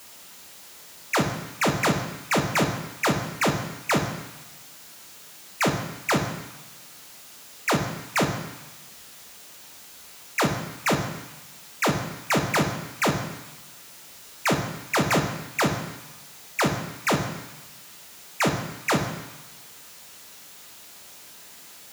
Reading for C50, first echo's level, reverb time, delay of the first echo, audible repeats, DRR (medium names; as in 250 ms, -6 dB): 7.5 dB, no echo, 1.1 s, no echo, no echo, 3.0 dB